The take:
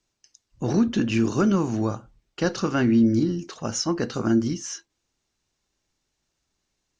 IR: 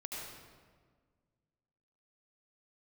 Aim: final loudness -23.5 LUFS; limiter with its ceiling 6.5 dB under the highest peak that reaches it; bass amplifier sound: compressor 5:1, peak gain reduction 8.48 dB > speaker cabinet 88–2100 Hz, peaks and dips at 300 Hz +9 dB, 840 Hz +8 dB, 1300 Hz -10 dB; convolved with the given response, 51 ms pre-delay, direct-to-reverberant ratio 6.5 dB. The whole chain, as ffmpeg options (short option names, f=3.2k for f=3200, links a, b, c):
-filter_complex "[0:a]alimiter=limit=-17.5dB:level=0:latency=1,asplit=2[a][b];[1:a]atrim=start_sample=2205,adelay=51[c];[b][c]afir=irnorm=-1:irlink=0,volume=-6.5dB[d];[a][d]amix=inputs=2:normalize=0,acompressor=threshold=-28dB:ratio=5,highpass=f=88:w=0.5412,highpass=f=88:w=1.3066,equalizer=f=300:t=q:w=4:g=9,equalizer=f=840:t=q:w=4:g=8,equalizer=f=1.3k:t=q:w=4:g=-10,lowpass=f=2.1k:w=0.5412,lowpass=f=2.1k:w=1.3066,volume=6.5dB"